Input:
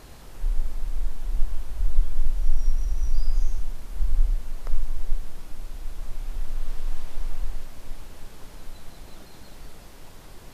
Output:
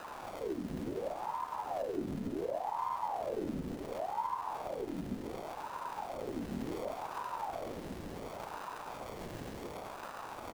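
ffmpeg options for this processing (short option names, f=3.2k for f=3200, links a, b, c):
-filter_complex "[0:a]highpass=63,alimiter=level_in=10dB:limit=-24dB:level=0:latency=1:release=227,volume=-10dB,acrusher=samples=39:mix=1:aa=0.000001,asplit=2[a][b];[b]asplit=8[c][d][e][f][g][h][i][j];[c]adelay=136,afreqshift=-90,volume=-5.5dB[k];[d]adelay=272,afreqshift=-180,volume=-10.1dB[l];[e]adelay=408,afreqshift=-270,volume=-14.7dB[m];[f]adelay=544,afreqshift=-360,volume=-19.2dB[n];[g]adelay=680,afreqshift=-450,volume=-23.8dB[o];[h]adelay=816,afreqshift=-540,volume=-28.4dB[p];[i]adelay=952,afreqshift=-630,volume=-33dB[q];[j]adelay=1088,afreqshift=-720,volume=-37.6dB[r];[k][l][m][n][o][p][q][r]amix=inputs=8:normalize=0[s];[a][s]amix=inputs=2:normalize=0,aeval=exprs='val(0)*sin(2*PI*600*n/s+600*0.65/0.69*sin(2*PI*0.69*n/s))':c=same,volume=5.5dB"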